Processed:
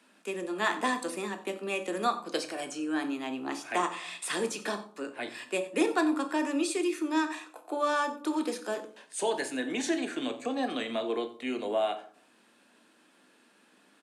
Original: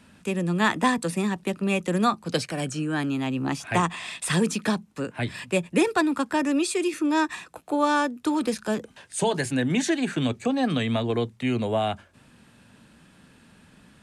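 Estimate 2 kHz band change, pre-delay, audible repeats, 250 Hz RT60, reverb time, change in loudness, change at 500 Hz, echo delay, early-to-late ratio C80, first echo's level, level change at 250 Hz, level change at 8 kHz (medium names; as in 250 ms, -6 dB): -5.0 dB, 3 ms, 1, 0.75 s, 0.55 s, -6.0 dB, -4.5 dB, 90 ms, 15.0 dB, -18.0 dB, -7.5 dB, -5.5 dB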